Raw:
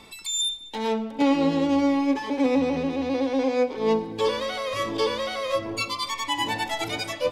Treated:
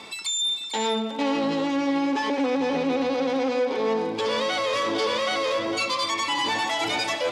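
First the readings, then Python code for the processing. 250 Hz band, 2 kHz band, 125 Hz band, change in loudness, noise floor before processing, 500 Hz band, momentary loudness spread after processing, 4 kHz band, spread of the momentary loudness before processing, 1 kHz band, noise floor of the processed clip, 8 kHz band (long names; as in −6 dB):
−2.5 dB, +3.5 dB, −4.5 dB, +0.5 dB, −41 dBFS, 0.0 dB, 2 LU, +3.0 dB, 6 LU, +2.5 dB, −34 dBFS, +1.0 dB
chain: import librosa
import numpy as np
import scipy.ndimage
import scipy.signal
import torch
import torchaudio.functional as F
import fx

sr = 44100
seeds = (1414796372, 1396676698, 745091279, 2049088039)

p1 = fx.low_shelf(x, sr, hz=260.0, db=-9.0)
p2 = fx.over_compress(p1, sr, threshold_db=-31.0, ratio=-1.0)
p3 = p1 + (p2 * 10.0 ** (-2.0 / 20.0))
p4 = fx.dmg_crackle(p3, sr, seeds[0], per_s=51.0, level_db=-33.0)
p5 = 10.0 ** (-21.5 / 20.0) * np.tanh(p4 / 10.0 ** (-21.5 / 20.0))
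p6 = fx.bandpass_edges(p5, sr, low_hz=120.0, high_hz=7600.0)
p7 = p6 + fx.echo_single(p6, sr, ms=452, db=-8.5, dry=0)
y = p7 * 10.0 ** (1.5 / 20.0)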